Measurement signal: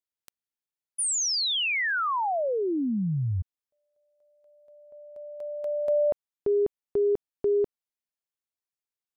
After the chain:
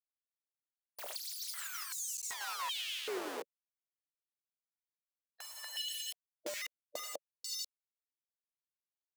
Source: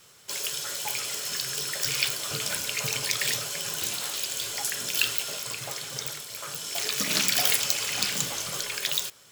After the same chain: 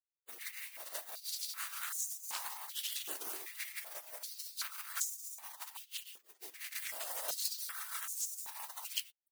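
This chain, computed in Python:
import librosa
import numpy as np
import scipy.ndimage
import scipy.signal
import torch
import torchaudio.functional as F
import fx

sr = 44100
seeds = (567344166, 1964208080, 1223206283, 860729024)

p1 = x + fx.echo_single(x, sr, ms=493, db=-17.5, dry=0)
p2 = fx.rotary(p1, sr, hz=6.0)
p3 = fx.quant_dither(p2, sr, seeds[0], bits=6, dither='none')
p4 = fx.spec_gate(p3, sr, threshold_db=-15, keep='weak')
p5 = fx.filter_held_highpass(p4, sr, hz=2.6, low_hz=400.0, high_hz=6800.0)
y = p5 * librosa.db_to_amplitude(-3.5)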